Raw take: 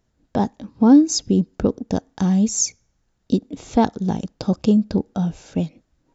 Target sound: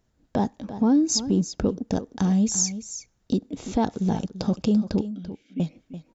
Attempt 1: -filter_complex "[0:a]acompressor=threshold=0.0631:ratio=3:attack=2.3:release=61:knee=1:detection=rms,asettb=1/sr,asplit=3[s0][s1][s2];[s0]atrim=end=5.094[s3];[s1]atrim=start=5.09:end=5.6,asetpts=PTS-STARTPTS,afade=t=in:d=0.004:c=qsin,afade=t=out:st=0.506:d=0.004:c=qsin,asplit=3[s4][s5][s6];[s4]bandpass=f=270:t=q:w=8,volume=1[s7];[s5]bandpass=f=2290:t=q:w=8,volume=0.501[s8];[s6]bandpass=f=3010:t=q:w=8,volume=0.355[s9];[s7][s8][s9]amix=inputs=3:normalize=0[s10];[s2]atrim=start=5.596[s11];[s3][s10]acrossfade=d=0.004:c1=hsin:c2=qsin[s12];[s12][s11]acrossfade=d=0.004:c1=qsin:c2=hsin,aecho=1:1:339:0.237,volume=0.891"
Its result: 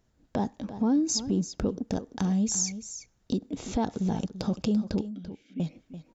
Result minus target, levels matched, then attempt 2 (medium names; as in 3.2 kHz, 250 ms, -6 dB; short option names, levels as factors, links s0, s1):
compression: peak gain reduction +5 dB
-filter_complex "[0:a]acompressor=threshold=0.15:ratio=3:attack=2.3:release=61:knee=1:detection=rms,asettb=1/sr,asplit=3[s0][s1][s2];[s0]atrim=end=5.094[s3];[s1]atrim=start=5.09:end=5.6,asetpts=PTS-STARTPTS,afade=t=in:d=0.004:c=qsin,afade=t=out:st=0.506:d=0.004:c=qsin,asplit=3[s4][s5][s6];[s4]bandpass=f=270:t=q:w=8,volume=1[s7];[s5]bandpass=f=2290:t=q:w=8,volume=0.501[s8];[s6]bandpass=f=3010:t=q:w=8,volume=0.355[s9];[s7][s8][s9]amix=inputs=3:normalize=0[s10];[s2]atrim=start=5.596[s11];[s3][s10]acrossfade=d=0.004:c1=hsin:c2=qsin[s12];[s12][s11]acrossfade=d=0.004:c1=qsin:c2=hsin,aecho=1:1:339:0.237,volume=0.891"